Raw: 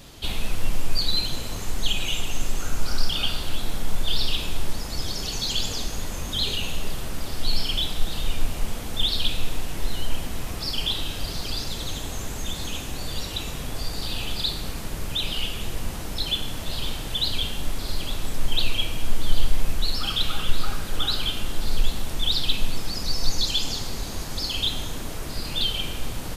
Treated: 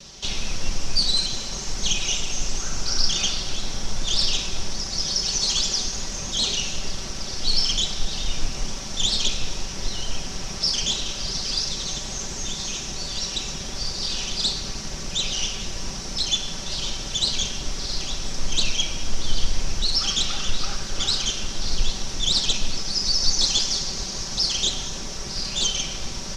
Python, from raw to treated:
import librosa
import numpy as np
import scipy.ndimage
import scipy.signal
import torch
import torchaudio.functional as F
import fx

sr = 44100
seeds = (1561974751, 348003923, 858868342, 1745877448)

y = fx.lower_of_two(x, sr, delay_ms=5.2)
y = fx.lowpass_res(y, sr, hz=5700.0, q=6.1)